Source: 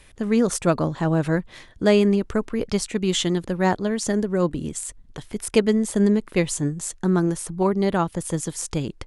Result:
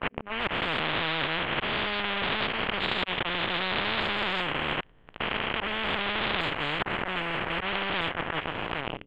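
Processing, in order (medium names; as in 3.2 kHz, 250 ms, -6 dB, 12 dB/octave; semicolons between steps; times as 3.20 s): spectrogram pixelated in time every 400 ms; gate -26 dBFS, range -29 dB; level rider gain up to 14 dB; peak limiter -10.5 dBFS, peak gain reduction 8.5 dB; slow attack 690 ms; waveshaping leveller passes 5; elliptic low-pass 3 kHz, stop band 50 dB; spectrum-flattening compressor 10:1; trim -1.5 dB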